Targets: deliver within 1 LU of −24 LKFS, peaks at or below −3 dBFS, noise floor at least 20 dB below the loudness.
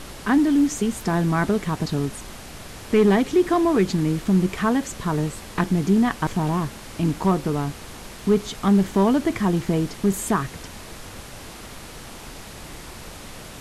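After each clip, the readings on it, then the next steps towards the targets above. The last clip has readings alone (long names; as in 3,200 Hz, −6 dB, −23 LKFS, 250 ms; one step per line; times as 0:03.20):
share of clipped samples 0.3%; peaks flattened at −10.5 dBFS; background noise floor −40 dBFS; target noise floor −42 dBFS; integrated loudness −22.0 LKFS; sample peak −10.5 dBFS; target loudness −24.0 LKFS
→ clipped peaks rebuilt −10.5 dBFS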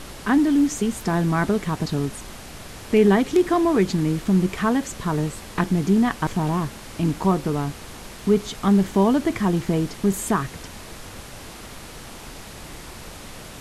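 share of clipped samples 0.0%; background noise floor −40 dBFS; target noise floor −42 dBFS
→ noise reduction from a noise print 6 dB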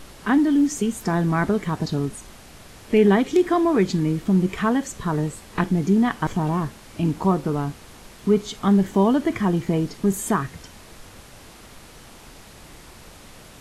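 background noise floor −45 dBFS; integrated loudness −22.0 LKFS; sample peak −5.5 dBFS; target loudness −24.0 LKFS
→ level −2 dB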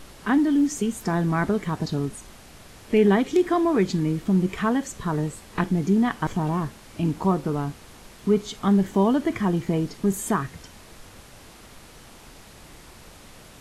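integrated loudness −24.0 LKFS; sample peak −7.5 dBFS; background noise floor −47 dBFS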